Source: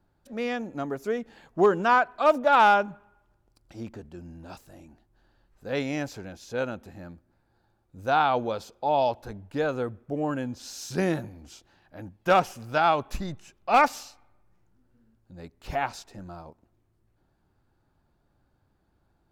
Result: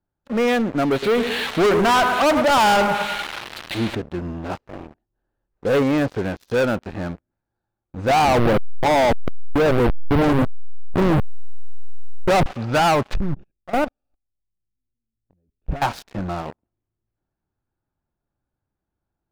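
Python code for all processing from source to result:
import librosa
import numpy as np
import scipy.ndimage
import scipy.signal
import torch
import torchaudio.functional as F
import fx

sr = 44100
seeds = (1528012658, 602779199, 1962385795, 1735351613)

y = fx.chain(x, sr, fx.crossing_spikes(level_db=-20.0),
    fx.cheby1_lowpass(hz=4200.0, order=5),
    fx.echo_feedback(ms=104, feedback_pct=52, wet_db=-12.5), at=(0.92, 3.95))
y = fx.chain(y, sr, fx.lowpass(hz=2000.0, slope=6),
    fx.peak_eq(hz=450.0, db=5.0, octaves=0.66), at=(4.48, 6.22))
y = fx.chain(y, sr, fx.delta_hold(step_db=-25.5),
    fx.lowpass(hz=1300.0, slope=24),
    fx.env_flatten(amount_pct=50), at=(8.09, 12.46))
y = fx.chain(y, sr, fx.level_steps(step_db=19),
    fx.moving_average(points=43),
    fx.low_shelf(hz=73.0, db=11.5), at=(13.15, 15.82))
y = fx.env_lowpass_down(y, sr, base_hz=2000.0, full_db=-20.0)
y = scipy.signal.sosfilt(scipy.signal.butter(2, 3400.0, 'lowpass', fs=sr, output='sos'), y)
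y = fx.leveller(y, sr, passes=5)
y = y * 10.0 ** (-3.0 / 20.0)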